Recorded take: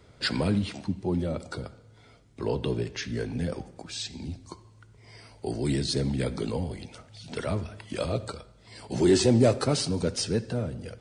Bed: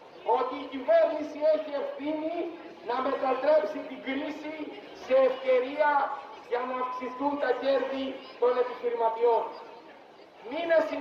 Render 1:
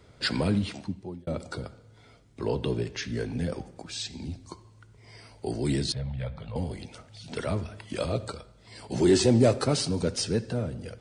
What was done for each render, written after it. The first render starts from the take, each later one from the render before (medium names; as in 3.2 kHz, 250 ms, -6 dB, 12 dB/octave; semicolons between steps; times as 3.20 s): 0.71–1.27 s: fade out; 5.92–6.56 s: FFT filter 120 Hz 0 dB, 370 Hz -28 dB, 540 Hz -4 dB, 1.6 kHz -7 dB, 3.4 kHz -8 dB, 6 kHz -26 dB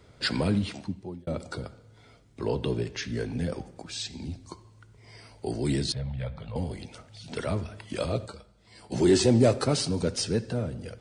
8.26–8.92 s: feedback comb 67 Hz, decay 0.16 s, harmonics odd, mix 70%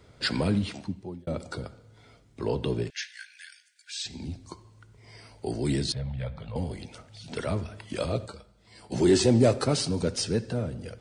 2.90–4.06 s: brick-wall FIR high-pass 1.4 kHz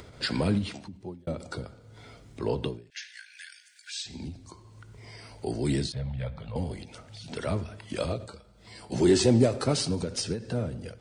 upward compressor, threshold -40 dBFS; endings held to a fixed fall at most 140 dB/s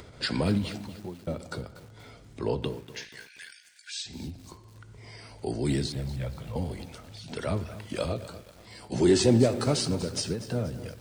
bit-crushed delay 240 ms, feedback 55%, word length 7-bit, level -14 dB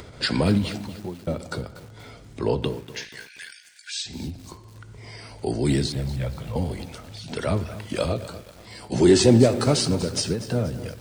trim +5.5 dB